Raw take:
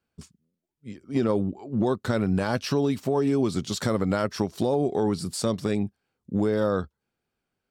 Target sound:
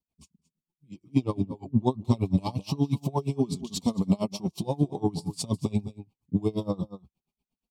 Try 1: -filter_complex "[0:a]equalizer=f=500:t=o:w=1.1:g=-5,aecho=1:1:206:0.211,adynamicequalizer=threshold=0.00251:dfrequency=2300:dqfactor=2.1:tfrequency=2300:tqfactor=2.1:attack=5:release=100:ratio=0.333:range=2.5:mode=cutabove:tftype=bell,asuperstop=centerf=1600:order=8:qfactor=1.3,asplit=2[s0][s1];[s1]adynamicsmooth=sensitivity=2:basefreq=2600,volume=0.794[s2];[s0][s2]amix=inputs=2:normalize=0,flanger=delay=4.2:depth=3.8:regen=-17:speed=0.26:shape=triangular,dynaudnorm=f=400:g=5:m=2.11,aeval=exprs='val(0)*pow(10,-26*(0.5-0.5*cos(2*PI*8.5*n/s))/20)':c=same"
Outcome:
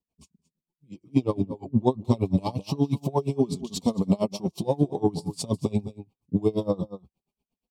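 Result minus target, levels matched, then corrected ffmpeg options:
500 Hz band +3.5 dB
-filter_complex "[0:a]equalizer=f=500:t=o:w=1.1:g=-12,aecho=1:1:206:0.211,adynamicequalizer=threshold=0.00251:dfrequency=2300:dqfactor=2.1:tfrequency=2300:tqfactor=2.1:attack=5:release=100:ratio=0.333:range=2.5:mode=cutabove:tftype=bell,asuperstop=centerf=1600:order=8:qfactor=1.3,asplit=2[s0][s1];[s1]adynamicsmooth=sensitivity=2:basefreq=2600,volume=0.794[s2];[s0][s2]amix=inputs=2:normalize=0,flanger=delay=4.2:depth=3.8:regen=-17:speed=0.26:shape=triangular,dynaudnorm=f=400:g=5:m=2.11,aeval=exprs='val(0)*pow(10,-26*(0.5-0.5*cos(2*PI*8.5*n/s))/20)':c=same"

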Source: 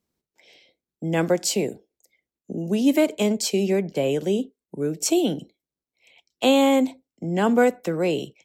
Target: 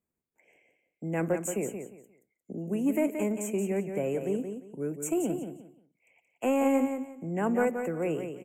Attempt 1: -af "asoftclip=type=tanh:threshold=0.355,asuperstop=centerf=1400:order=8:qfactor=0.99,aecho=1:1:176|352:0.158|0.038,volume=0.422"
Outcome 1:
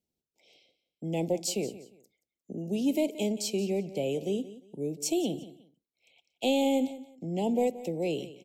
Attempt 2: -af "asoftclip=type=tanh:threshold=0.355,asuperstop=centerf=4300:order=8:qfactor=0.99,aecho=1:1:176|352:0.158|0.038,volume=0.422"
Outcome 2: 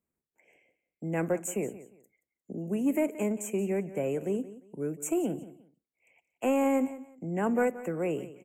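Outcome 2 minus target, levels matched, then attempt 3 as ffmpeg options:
echo-to-direct -8.5 dB
-af "asoftclip=type=tanh:threshold=0.355,asuperstop=centerf=4300:order=8:qfactor=0.99,aecho=1:1:176|352|528:0.422|0.101|0.0243,volume=0.422"

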